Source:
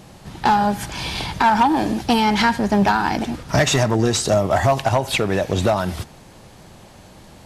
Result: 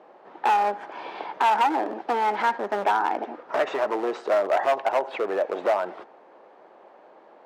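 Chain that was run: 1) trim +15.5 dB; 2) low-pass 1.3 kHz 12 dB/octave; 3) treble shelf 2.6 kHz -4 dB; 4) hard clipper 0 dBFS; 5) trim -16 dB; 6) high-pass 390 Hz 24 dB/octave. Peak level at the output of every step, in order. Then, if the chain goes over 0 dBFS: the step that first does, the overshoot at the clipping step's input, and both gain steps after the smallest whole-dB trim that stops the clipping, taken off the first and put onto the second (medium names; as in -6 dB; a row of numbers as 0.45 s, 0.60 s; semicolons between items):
+6.0 dBFS, +6.5 dBFS, +6.5 dBFS, 0.0 dBFS, -16.0 dBFS, -11.0 dBFS; step 1, 6.5 dB; step 1 +8.5 dB, step 5 -9 dB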